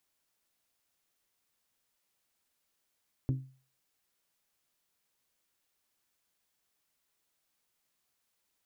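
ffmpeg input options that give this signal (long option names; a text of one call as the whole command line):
ffmpeg -f lavfi -i "aevalsrc='0.0631*pow(10,-3*t/0.41)*sin(2*PI*132*t)+0.0282*pow(10,-3*t/0.252)*sin(2*PI*264*t)+0.0126*pow(10,-3*t/0.222)*sin(2*PI*316.8*t)+0.00562*pow(10,-3*t/0.19)*sin(2*PI*396*t)+0.00251*pow(10,-3*t/0.155)*sin(2*PI*528*t)':duration=0.89:sample_rate=44100" out.wav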